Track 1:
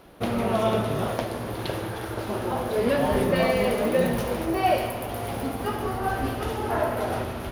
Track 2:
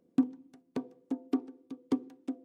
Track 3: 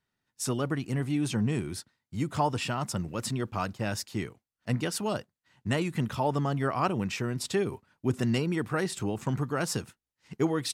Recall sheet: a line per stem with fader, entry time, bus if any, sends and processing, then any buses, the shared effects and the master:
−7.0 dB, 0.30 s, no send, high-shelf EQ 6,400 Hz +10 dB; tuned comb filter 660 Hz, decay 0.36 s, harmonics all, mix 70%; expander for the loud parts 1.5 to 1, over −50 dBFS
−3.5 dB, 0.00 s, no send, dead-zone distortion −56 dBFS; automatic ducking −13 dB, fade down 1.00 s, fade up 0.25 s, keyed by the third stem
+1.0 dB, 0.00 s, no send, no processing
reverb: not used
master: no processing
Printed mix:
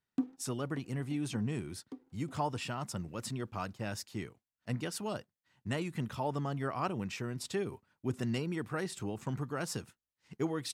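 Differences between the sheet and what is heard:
stem 1: muted
stem 3 +1.0 dB → −7.0 dB

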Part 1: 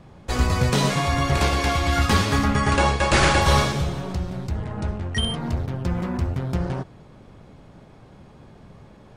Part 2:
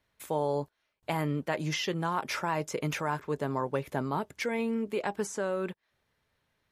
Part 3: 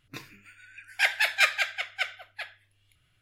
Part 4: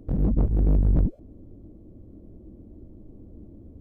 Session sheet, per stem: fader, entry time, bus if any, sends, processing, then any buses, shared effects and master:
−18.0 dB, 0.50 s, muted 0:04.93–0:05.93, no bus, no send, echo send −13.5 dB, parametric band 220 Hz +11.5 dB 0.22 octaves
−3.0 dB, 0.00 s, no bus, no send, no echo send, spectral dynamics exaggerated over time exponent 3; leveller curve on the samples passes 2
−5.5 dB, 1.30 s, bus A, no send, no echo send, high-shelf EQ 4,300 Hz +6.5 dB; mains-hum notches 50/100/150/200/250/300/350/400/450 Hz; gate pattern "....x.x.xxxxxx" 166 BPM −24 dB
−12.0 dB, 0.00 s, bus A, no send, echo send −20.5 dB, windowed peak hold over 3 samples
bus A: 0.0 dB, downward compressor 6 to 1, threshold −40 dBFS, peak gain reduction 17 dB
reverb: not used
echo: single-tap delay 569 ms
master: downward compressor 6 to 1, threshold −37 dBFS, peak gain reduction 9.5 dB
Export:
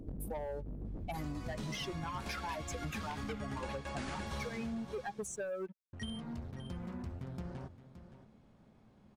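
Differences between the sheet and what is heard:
stem 1: entry 0.50 s → 0.85 s
stem 4 −12.0 dB → −0.5 dB

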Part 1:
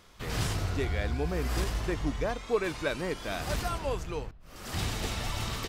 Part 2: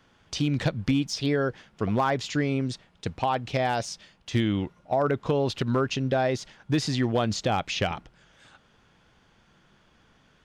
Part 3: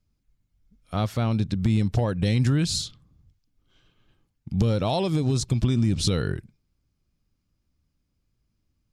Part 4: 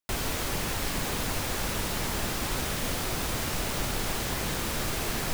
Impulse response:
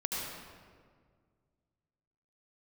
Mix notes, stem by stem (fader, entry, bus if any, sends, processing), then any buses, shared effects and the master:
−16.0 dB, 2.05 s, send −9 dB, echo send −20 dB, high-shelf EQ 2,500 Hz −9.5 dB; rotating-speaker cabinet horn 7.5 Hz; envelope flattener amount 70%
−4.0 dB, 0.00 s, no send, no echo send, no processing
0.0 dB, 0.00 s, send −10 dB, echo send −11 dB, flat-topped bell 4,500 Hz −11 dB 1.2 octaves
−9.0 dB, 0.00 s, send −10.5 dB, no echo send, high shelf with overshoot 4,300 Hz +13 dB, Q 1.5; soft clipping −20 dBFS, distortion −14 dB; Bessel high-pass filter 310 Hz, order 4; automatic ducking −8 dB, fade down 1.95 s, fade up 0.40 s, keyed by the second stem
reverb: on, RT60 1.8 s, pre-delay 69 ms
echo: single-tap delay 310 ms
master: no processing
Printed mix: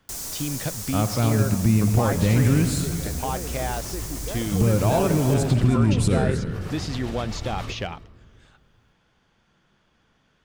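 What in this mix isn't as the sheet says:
stem 1 −16.0 dB → −7.5 dB
stem 4: missing Bessel high-pass filter 310 Hz, order 4

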